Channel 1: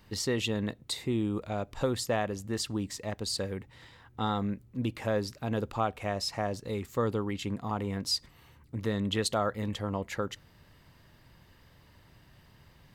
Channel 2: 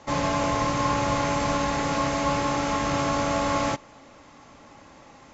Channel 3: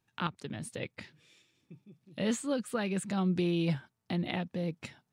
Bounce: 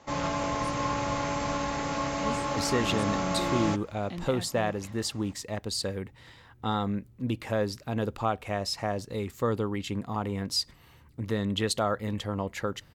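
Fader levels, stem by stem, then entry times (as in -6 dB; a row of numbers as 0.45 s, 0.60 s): +1.5 dB, -5.5 dB, -6.0 dB; 2.45 s, 0.00 s, 0.00 s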